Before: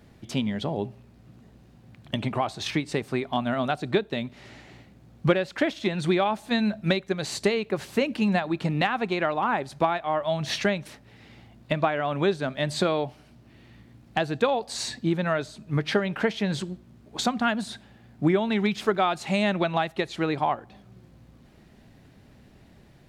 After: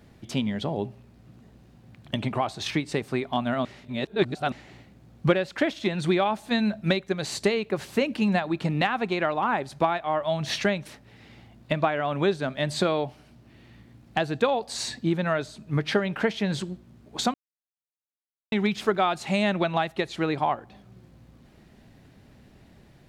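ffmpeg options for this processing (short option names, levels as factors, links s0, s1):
-filter_complex "[0:a]asplit=5[s0][s1][s2][s3][s4];[s0]atrim=end=3.652[s5];[s1]atrim=start=3.648:end=4.522,asetpts=PTS-STARTPTS,areverse[s6];[s2]atrim=start=4.518:end=17.34,asetpts=PTS-STARTPTS,afade=t=out:st=12.818:d=0.004:c=hsin[s7];[s3]atrim=start=17.34:end=18.52,asetpts=PTS-STARTPTS,volume=0[s8];[s4]atrim=start=18.52,asetpts=PTS-STARTPTS,afade=t=in:d=0.004:c=hsin[s9];[s5][s6]acrossfade=d=0.004:c1=hsin:c2=hsin[s10];[s7][s8][s9]concat=n=3:v=0:a=1[s11];[s10][s11]acrossfade=d=0.004:c1=hsin:c2=hsin"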